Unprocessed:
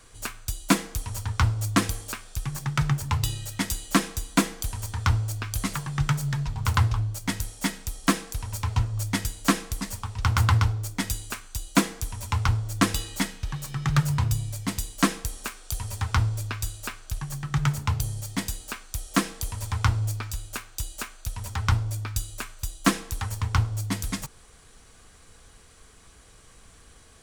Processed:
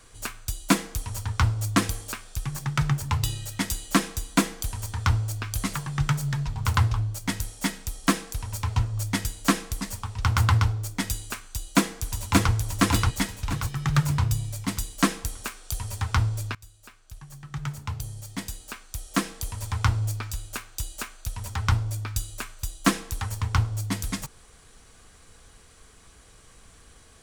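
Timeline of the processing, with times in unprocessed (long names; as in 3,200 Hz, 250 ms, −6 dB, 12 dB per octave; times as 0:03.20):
0:11.46–0:12.52: delay throw 580 ms, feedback 45%, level −0.5 dB
0:16.55–0:19.91: fade in, from −21 dB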